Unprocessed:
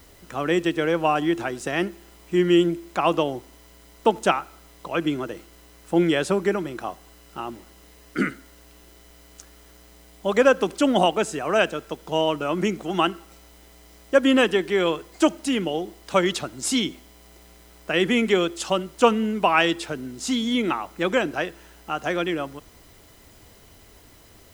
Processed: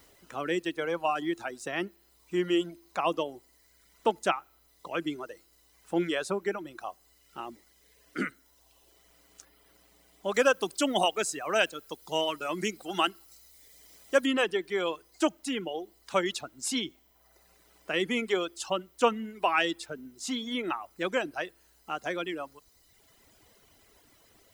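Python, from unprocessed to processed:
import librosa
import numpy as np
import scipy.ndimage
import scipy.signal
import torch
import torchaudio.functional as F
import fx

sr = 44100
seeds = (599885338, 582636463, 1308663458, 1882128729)

y = fx.high_shelf(x, sr, hz=2900.0, db=9.0, at=(10.34, 14.26))
y = fx.dereverb_blind(y, sr, rt60_s=1.1)
y = fx.low_shelf(y, sr, hz=190.0, db=-8.5)
y = F.gain(torch.from_numpy(y), -6.0).numpy()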